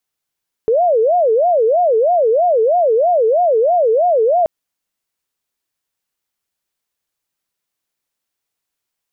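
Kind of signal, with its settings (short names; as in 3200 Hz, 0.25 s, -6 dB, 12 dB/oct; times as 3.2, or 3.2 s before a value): siren wail 436–720 Hz 3.1/s sine -10 dBFS 3.78 s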